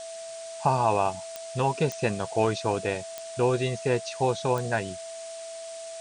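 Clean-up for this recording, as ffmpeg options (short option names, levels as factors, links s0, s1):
-af "adeclick=t=4,bandreject=f=660:w=30,afftdn=nr=30:nf=-39"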